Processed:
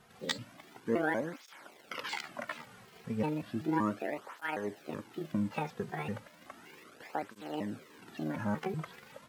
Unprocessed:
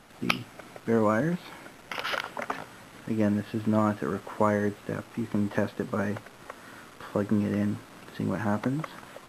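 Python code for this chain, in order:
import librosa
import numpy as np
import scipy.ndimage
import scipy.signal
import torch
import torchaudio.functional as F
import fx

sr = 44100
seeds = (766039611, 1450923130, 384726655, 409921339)

y = fx.pitch_trill(x, sr, semitones=7.0, every_ms=190)
y = fx.flanger_cancel(y, sr, hz=0.34, depth_ms=3.6)
y = y * librosa.db_to_amplitude(-4.0)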